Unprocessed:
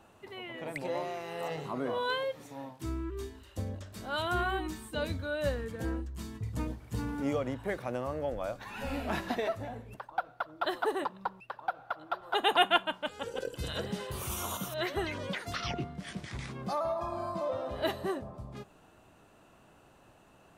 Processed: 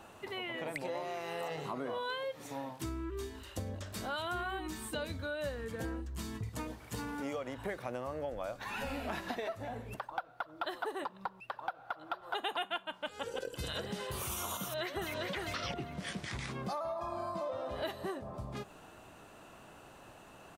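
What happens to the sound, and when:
6.49–7.58 low shelf 260 Hz -9 dB
14.61–15.33 echo throw 0.4 s, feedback 20%, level -3 dB
whole clip: low shelf 400 Hz -4.5 dB; compressor 4:1, threshold -44 dBFS; gain +7 dB

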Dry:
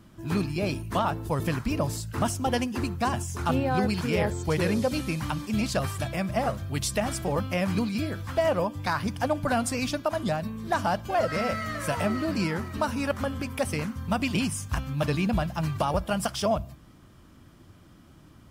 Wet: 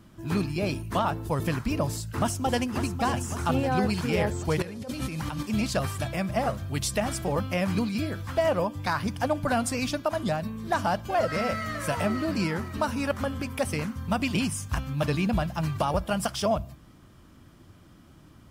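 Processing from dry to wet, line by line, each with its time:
1.93–2.78 echo throw 0.55 s, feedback 65%, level -9.5 dB
4.62–5.43 negative-ratio compressor -34 dBFS

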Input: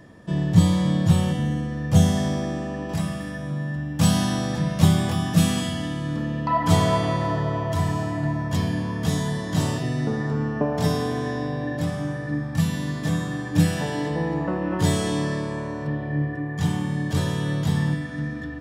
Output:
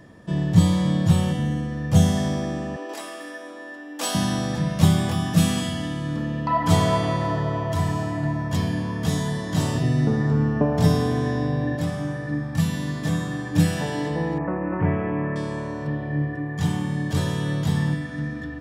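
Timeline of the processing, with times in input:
2.76–4.15 steep high-pass 290 Hz 48 dB/oct
9.75–11.76 low shelf 210 Hz +8 dB
14.38–15.36 elliptic low-pass 2400 Hz

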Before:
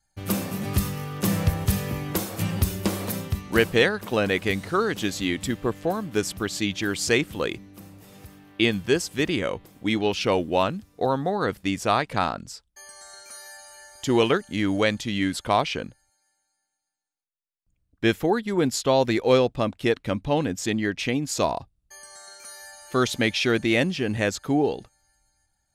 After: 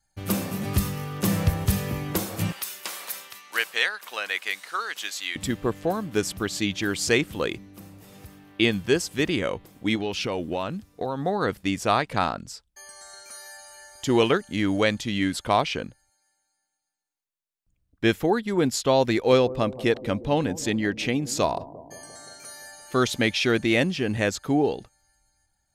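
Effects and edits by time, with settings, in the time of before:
2.52–5.36 HPF 1200 Hz
9.95–11.24 compressor 4:1, threshold -24 dBFS
19.13–22.95 analogue delay 0.174 s, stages 1024, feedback 68%, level -17 dB

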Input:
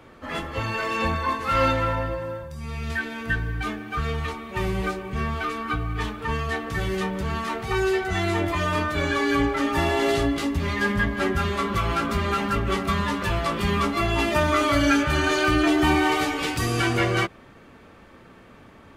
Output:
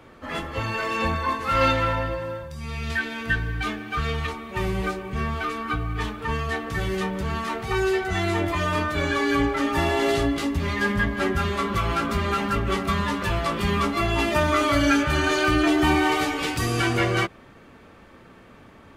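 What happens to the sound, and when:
1.61–4.27 bell 3500 Hz +4.5 dB 1.9 oct

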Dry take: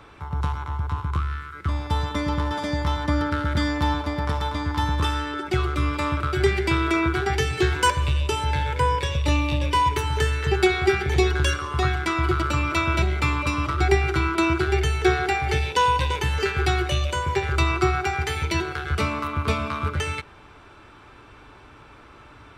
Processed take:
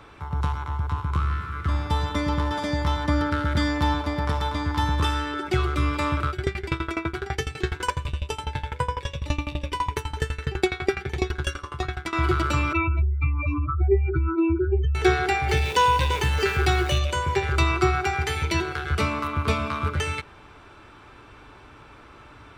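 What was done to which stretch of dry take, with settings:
1.02–1.68 reverb throw, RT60 2.9 s, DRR 4 dB
6.3–12.13 dB-ramp tremolo decaying 12 Hz, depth 21 dB
12.73–14.95 spectral contrast raised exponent 2.8
15.48–16.99 zero-crossing step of -34.5 dBFS

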